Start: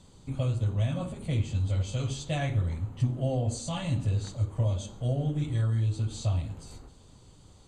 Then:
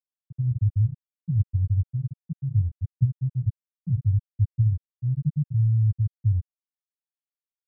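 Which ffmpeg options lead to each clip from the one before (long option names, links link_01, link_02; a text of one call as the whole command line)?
ffmpeg -i in.wav -af "afftfilt=real='re*gte(hypot(re,im),0.398)':imag='im*gte(hypot(re,im),0.398)':win_size=1024:overlap=0.75,volume=6dB" out.wav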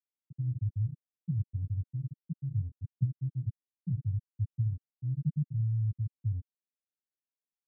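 ffmpeg -i in.wav -af "bandpass=frequency=260:width_type=q:width=1.4:csg=0" out.wav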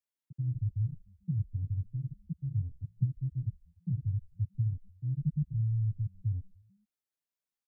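ffmpeg -i in.wav -filter_complex "[0:a]asplit=4[link_01][link_02][link_03][link_04];[link_02]adelay=146,afreqshift=-100,volume=-22dB[link_05];[link_03]adelay=292,afreqshift=-200,volume=-29.7dB[link_06];[link_04]adelay=438,afreqshift=-300,volume=-37.5dB[link_07];[link_01][link_05][link_06][link_07]amix=inputs=4:normalize=0" out.wav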